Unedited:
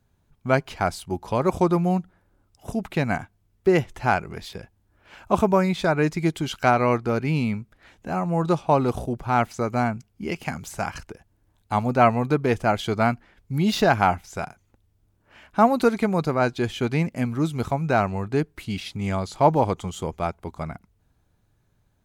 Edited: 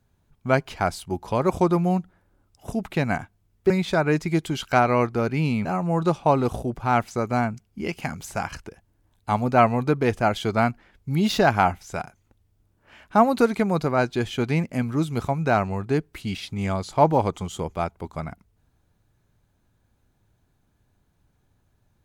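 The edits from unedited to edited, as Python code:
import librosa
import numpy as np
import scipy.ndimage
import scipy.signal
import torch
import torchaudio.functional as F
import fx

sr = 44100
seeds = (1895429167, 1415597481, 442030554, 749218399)

y = fx.edit(x, sr, fx.cut(start_s=3.7, length_s=1.91),
    fx.cut(start_s=7.56, length_s=0.52), tone=tone)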